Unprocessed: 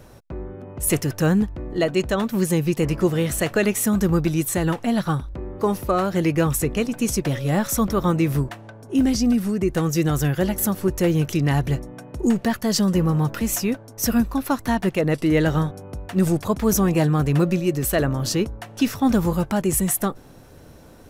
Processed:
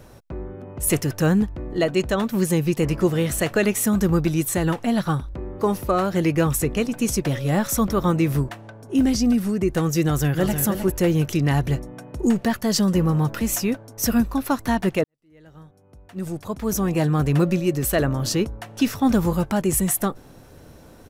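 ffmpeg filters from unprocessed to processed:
-filter_complex "[0:a]asplit=2[a][b];[b]afade=t=in:st=10.03:d=0.01,afade=t=out:st=10.6:d=0.01,aecho=0:1:310|620|930:0.446684|0.0670025|0.0100504[c];[a][c]amix=inputs=2:normalize=0,asplit=2[d][e];[d]atrim=end=15.04,asetpts=PTS-STARTPTS,afade=t=out:st=15.036:d=0.004:c=hsin[f];[e]atrim=start=15.04,asetpts=PTS-STARTPTS,afade=t=in:d=2.2:c=qua[g];[f][g]concat=n=2:v=0:a=1"

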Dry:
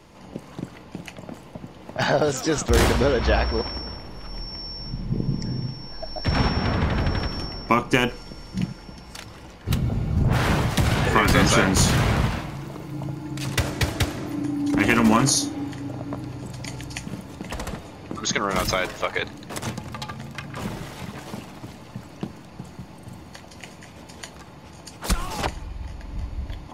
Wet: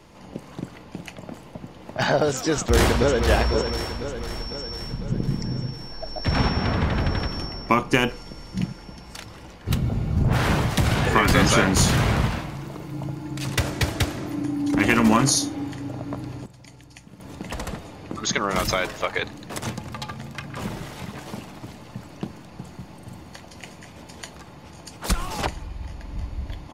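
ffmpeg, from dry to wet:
-filter_complex "[0:a]asplit=2[a][b];[b]afade=t=in:st=2.51:d=0.01,afade=t=out:st=3.26:d=0.01,aecho=0:1:500|1000|1500|2000|2500|3000|3500|4000:0.421697|0.253018|0.151811|0.0910864|0.0546519|0.0327911|0.0196747|0.0118048[c];[a][c]amix=inputs=2:normalize=0,asplit=3[d][e][f];[d]atrim=end=16.46,asetpts=PTS-STARTPTS,afade=t=out:st=16.31:d=0.15:c=log:silence=0.223872[g];[e]atrim=start=16.46:end=17.2,asetpts=PTS-STARTPTS,volume=-13dB[h];[f]atrim=start=17.2,asetpts=PTS-STARTPTS,afade=t=in:d=0.15:c=log:silence=0.223872[i];[g][h][i]concat=n=3:v=0:a=1"

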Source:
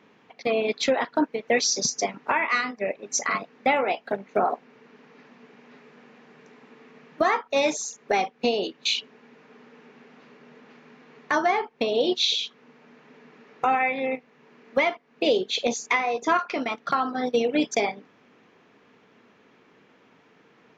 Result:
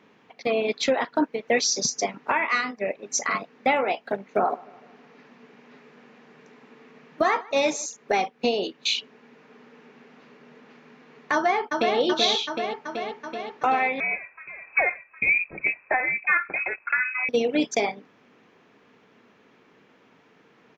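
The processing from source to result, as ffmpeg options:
-filter_complex "[0:a]asettb=1/sr,asplit=3[a][b][c];[a]atrim=end=4.284[d];[b]atrim=start=4.28:end=7.86,asetpts=PTS-STARTPTS,afade=t=in:d=0.004:c=qsin,afade=t=out:st=3.576:d=0.004:c=qsin,asplit=2[e][f];[f]adelay=153,lowpass=f=4.4k:p=1,volume=-22.5dB,asplit=2[g][h];[h]adelay=153,lowpass=f=4.4k:p=1,volume=0.53,asplit=2[i][j];[j]adelay=153,lowpass=f=4.4k:p=1,volume=0.53,asplit=2[k][l];[l]adelay=153,lowpass=f=4.4k:p=1,volume=0.53[m];[e][g][i][k][m]amix=inputs=5:normalize=0,atrim=end_sample=157878[n];[c]atrim=start=7.856[o];[d][n]acrossfade=d=0.004:c1=hsin:c2=qsin[p];[p][o]acrossfade=d=0.004:c1=qsin:c2=hsin,asplit=2[q][r];[r]afade=t=in:st=11.33:d=0.01,afade=t=out:st=11.97:d=0.01,aecho=0:1:380|760|1140|1520|1900|2280|2660|3040|3420|3800|4180|4560:0.668344|0.501258|0.375943|0.281958|0.211468|0.158601|0.118951|0.0892131|0.0669099|0.0501824|0.0376368|0.0282276[s];[q][s]amix=inputs=2:normalize=0,asettb=1/sr,asplit=3[t][u][v];[t]atrim=end=14.004[w];[u]atrim=start=14:end=17.29,asetpts=PTS-STARTPTS,afade=t=in:d=0.004:c=qsin,afade=t=out:st=3.286:d=0.004:c=qsin,lowpass=f=2.4k:t=q:w=0.5098,lowpass=f=2.4k:t=q:w=0.6013,lowpass=f=2.4k:t=q:w=0.9,lowpass=f=2.4k:t=q:w=2.563,afreqshift=-2800[x];[v]atrim=start=17.286[y];[w][x]acrossfade=d=0.004:c1=hsin:c2=qsin[z];[z][y]acrossfade=d=0.004:c1=qsin:c2=hsin"

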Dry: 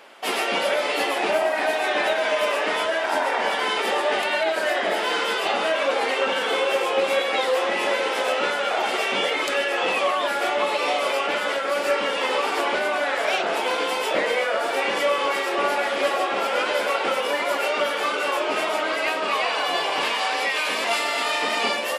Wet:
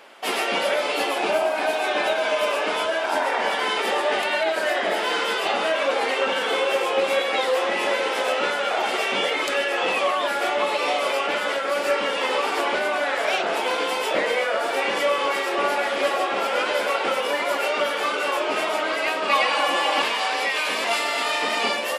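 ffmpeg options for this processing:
-filter_complex "[0:a]asettb=1/sr,asplit=3[a][b][c];[a]atrim=end=0.824[d];[b]atrim=start=0.82:end=3.16,asetpts=PTS-STARTPTS,afade=t=in:d=0.004:c=qsin,afade=t=out:st=2.336:d=0.004:c=qsin,bandreject=f=1.9k:w=7.7[e];[c]atrim=start=3.156[f];[d][e]acrossfade=d=0.004:c1=hsin:c2=qsin[g];[g][f]acrossfade=d=0.004:c1=qsin:c2=hsin,asettb=1/sr,asplit=3[h][i][j];[h]atrim=end=19.294[k];[i]atrim=start=19.29:end=20.02,asetpts=PTS-STARTPTS,afade=t=in:d=0.004:c=qsin,afade=t=out:st=0.726:d=0.004:c=qsin,aecho=1:1:3.6:0.95,atrim=end_sample=32193[l];[j]atrim=start=20.016[m];[k][l]acrossfade=d=0.004:c1=hsin:c2=qsin[n];[n][m]acrossfade=d=0.004:c1=qsin:c2=hsin"

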